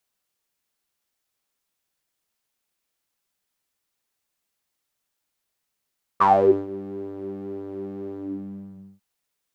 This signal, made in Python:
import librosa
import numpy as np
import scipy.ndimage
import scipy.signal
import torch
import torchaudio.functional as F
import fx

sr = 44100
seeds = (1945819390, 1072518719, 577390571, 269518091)

y = fx.sub_patch_pwm(sr, seeds[0], note=55, wave2='saw', interval_st=0, detune_cents=16, level2_db=-9.0, sub_db=0.0, noise_db=-30.0, kind='bandpass', cutoff_hz=150.0, q=12.0, env_oct=3.0, env_decay_s=0.32, env_sustain_pct=40, attack_ms=18.0, decay_s=0.45, sustain_db=-19.0, release_s=0.86, note_s=1.94, lfo_hz=1.9, width_pct=24, width_swing_pct=17)